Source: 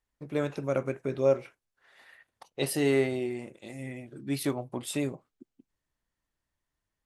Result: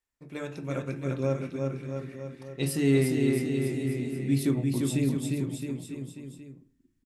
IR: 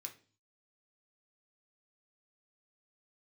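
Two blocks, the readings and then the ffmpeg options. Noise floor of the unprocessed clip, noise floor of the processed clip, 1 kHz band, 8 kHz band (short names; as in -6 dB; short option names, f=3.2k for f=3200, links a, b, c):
under -85 dBFS, -71 dBFS, -3.5 dB, +1.5 dB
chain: -filter_complex "[0:a]aecho=1:1:350|665|948.5|1204|1433:0.631|0.398|0.251|0.158|0.1,asplit=2[a][b];[1:a]atrim=start_sample=2205[c];[b][c]afir=irnorm=-1:irlink=0,volume=6.5dB[d];[a][d]amix=inputs=2:normalize=0,asubboost=boost=10:cutoff=220,volume=-8.5dB"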